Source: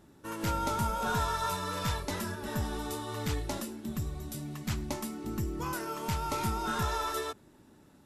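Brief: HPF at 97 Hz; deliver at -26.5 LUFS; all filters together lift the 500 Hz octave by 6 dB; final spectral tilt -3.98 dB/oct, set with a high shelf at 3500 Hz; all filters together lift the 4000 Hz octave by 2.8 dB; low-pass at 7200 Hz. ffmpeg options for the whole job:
-af "highpass=97,lowpass=7.2k,equalizer=f=500:t=o:g=7.5,highshelf=f=3.5k:g=-6,equalizer=f=4k:t=o:g=7.5,volume=6.5dB"

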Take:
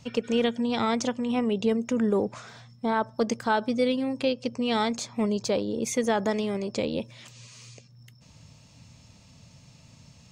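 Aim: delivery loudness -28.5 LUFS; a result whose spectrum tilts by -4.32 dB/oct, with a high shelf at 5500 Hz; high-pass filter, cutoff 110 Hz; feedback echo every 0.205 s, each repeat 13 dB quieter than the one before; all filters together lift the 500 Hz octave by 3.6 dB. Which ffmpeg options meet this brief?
-af "highpass=110,equalizer=f=500:t=o:g=4,highshelf=f=5.5k:g=4,aecho=1:1:205|410|615:0.224|0.0493|0.0108,volume=-3.5dB"

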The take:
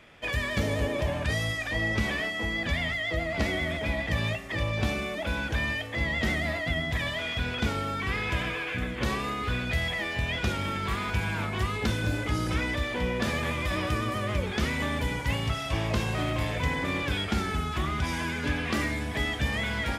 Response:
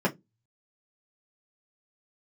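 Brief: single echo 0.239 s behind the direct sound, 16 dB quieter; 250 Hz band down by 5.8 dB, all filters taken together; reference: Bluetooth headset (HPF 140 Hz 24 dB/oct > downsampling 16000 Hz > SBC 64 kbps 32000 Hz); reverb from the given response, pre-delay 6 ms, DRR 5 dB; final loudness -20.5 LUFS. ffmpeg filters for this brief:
-filter_complex "[0:a]equalizer=f=250:t=o:g=-7.5,aecho=1:1:239:0.158,asplit=2[a][b];[1:a]atrim=start_sample=2205,adelay=6[c];[b][c]afir=irnorm=-1:irlink=0,volume=-17dB[d];[a][d]amix=inputs=2:normalize=0,highpass=f=140:w=0.5412,highpass=f=140:w=1.3066,aresample=16000,aresample=44100,volume=9dB" -ar 32000 -c:a sbc -b:a 64k

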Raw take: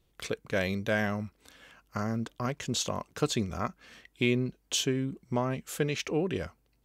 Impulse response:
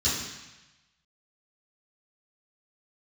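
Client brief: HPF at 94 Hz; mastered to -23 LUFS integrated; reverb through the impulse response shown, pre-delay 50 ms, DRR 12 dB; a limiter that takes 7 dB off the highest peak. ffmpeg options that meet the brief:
-filter_complex "[0:a]highpass=94,alimiter=limit=-19dB:level=0:latency=1,asplit=2[a][b];[1:a]atrim=start_sample=2205,adelay=50[c];[b][c]afir=irnorm=-1:irlink=0,volume=-23dB[d];[a][d]amix=inputs=2:normalize=0,volume=10dB"

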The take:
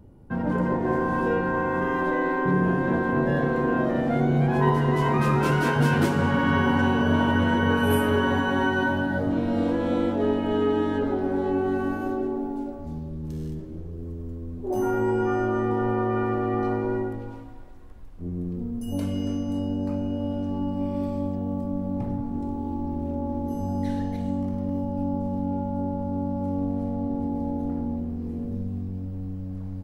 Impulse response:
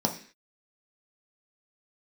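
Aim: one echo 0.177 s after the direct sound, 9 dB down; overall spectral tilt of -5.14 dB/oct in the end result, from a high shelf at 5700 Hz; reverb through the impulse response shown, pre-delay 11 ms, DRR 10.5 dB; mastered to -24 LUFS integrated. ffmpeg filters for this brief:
-filter_complex "[0:a]highshelf=f=5.7k:g=-4,aecho=1:1:177:0.355,asplit=2[a][b];[1:a]atrim=start_sample=2205,adelay=11[c];[b][c]afir=irnorm=-1:irlink=0,volume=-20dB[d];[a][d]amix=inputs=2:normalize=0"

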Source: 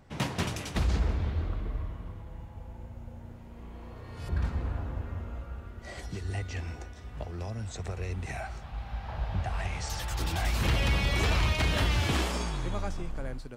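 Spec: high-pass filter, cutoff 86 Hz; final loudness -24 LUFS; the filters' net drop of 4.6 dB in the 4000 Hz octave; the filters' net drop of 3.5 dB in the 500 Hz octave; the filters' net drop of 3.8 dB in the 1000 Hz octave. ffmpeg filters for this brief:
-af "highpass=86,equalizer=f=500:t=o:g=-3.5,equalizer=f=1k:t=o:g=-3.5,equalizer=f=4k:t=o:g=-6,volume=11.5dB"

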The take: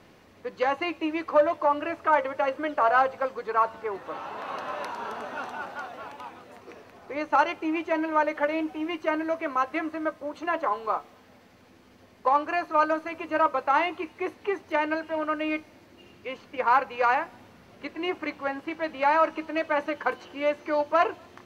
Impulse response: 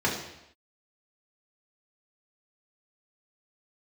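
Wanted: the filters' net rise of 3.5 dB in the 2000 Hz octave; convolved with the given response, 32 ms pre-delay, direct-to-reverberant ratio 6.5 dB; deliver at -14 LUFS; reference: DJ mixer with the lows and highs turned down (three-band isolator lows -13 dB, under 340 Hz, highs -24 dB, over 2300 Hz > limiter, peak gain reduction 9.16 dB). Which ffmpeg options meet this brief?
-filter_complex "[0:a]equalizer=f=2k:t=o:g=8,asplit=2[a][b];[1:a]atrim=start_sample=2205,adelay=32[c];[b][c]afir=irnorm=-1:irlink=0,volume=-19dB[d];[a][d]amix=inputs=2:normalize=0,acrossover=split=340 2300:gain=0.224 1 0.0631[e][f][g];[e][f][g]amix=inputs=3:normalize=0,volume=14dB,alimiter=limit=-2dB:level=0:latency=1"

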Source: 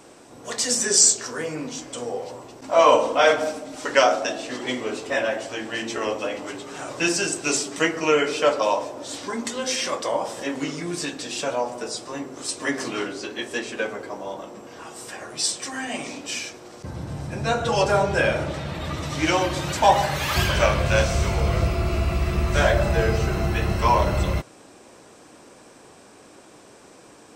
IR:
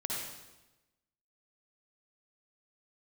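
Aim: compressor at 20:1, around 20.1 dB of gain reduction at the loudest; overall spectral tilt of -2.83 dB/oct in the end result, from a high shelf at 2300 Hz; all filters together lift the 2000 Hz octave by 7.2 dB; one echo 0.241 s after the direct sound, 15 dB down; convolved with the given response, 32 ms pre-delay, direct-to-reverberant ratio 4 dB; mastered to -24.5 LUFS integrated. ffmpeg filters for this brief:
-filter_complex "[0:a]equalizer=f=2k:t=o:g=6.5,highshelf=f=2.3k:g=5.5,acompressor=threshold=-27dB:ratio=20,aecho=1:1:241:0.178,asplit=2[a][b];[1:a]atrim=start_sample=2205,adelay=32[c];[b][c]afir=irnorm=-1:irlink=0,volume=-7.5dB[d];[a][d]amix=inputs=2:normalize=0,volume=5dB"

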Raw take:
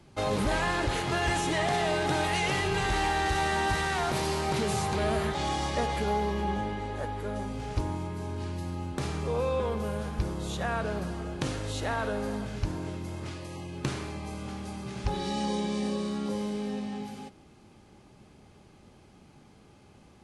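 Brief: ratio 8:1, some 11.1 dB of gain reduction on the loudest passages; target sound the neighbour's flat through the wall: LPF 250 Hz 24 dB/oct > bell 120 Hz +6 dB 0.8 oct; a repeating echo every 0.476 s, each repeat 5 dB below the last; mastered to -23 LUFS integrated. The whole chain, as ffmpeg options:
-af "acompressor=threshold=-35dB:ratio=8,lowpass=f=250:w=0.5412,lowpass=f=250:w=1.3066,equalizer=f=120:t=o:w=0.8:g=6,aecho=1:1:476|952|1428|1904|2380|2856|3332:0.562|0.315|0.176|0.0988|0.0553|0.031|0.0173,volume=16.5dB"

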